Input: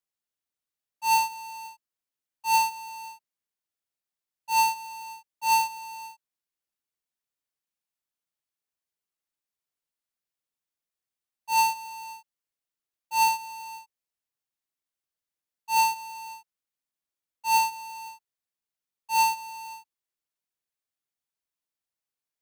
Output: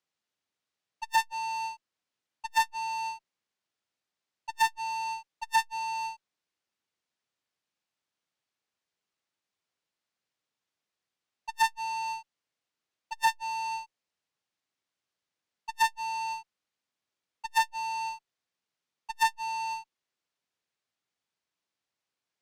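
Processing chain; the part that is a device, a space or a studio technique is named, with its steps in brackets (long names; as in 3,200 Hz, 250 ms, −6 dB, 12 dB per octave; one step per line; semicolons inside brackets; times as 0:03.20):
valve radio (band-pass filter 90–5,700 Hz; tube saturation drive 26 dB, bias 0.5; saturating transformer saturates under 690 Hz)
level +9 dB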